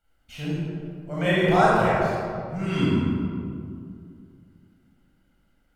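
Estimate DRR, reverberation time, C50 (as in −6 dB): −8.0 dB, 2.3 s, −4.0 dB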